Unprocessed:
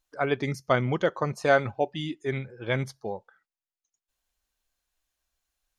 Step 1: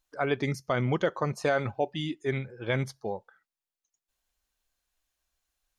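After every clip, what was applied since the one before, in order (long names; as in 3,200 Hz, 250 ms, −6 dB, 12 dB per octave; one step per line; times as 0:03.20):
brickwall limiter −15.5 dBFS, peak gain reduction 7.5 dB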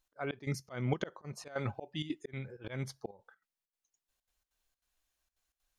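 volume swells 254 ms
gate pattern "x.xxx.xxxxxx.x" 193 BPM −12 dB
level −1.5 dB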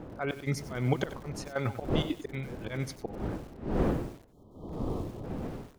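wind on the microphone 350 Hz −41 dBFS
time-frequency box erased 0:04.32–0:05.24, 1,300–3,000 Hz
feedback echo at a low word length 95 ms, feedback 35%, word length 8 bits, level −12 dB
level +4.5 dB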